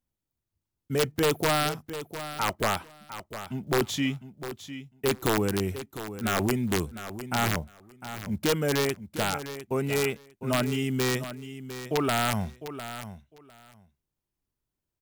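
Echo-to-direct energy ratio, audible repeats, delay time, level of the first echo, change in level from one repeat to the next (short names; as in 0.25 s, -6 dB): -12.0 dB, 2, 0.704 s, -12.0 dB, -16.0 dB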